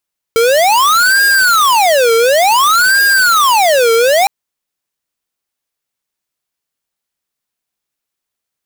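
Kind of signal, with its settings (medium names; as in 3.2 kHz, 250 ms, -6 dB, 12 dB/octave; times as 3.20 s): siren wail 454–1620 Hz 0.56 per s square -9.5 dBFS 3.91 s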